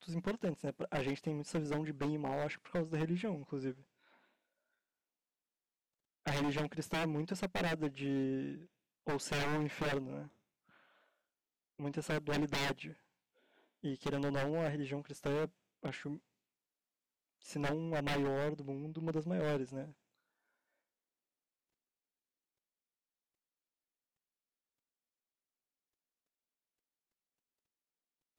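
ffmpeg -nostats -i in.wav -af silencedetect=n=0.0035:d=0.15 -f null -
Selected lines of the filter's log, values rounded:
silence_start: 3.74
silence_end: 6.26 | silence_duration: 2.52
silence_start: 8.64
silence_end: 9.07 | silence_duration: 0.42
silence_start: 10.27
silence_end: 11.80 | silence_duration: 1.53
silence_start: 12.93
silence_end: 13.84 | silence_duration: 0.91
silence_start: 15.48
silence_end: 15.83 | silence_duration: 0.35
silence_start: 16.18
silence_end: 17.45 | silence_duration: 1.27
silence_start: 19.91
silence_end: 28.39 | silence_duration: 8.47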